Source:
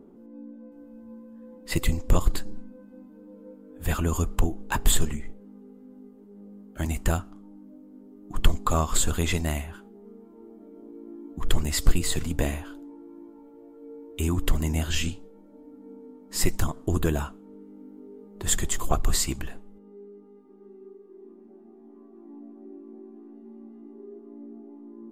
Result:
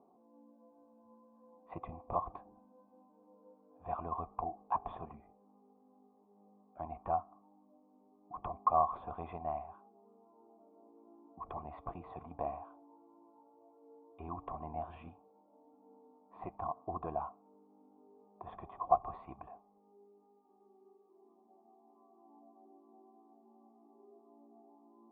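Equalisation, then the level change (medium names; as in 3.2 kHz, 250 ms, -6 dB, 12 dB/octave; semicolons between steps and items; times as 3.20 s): cascade formant filter a; high-pass 71 Hz; +6.5 dB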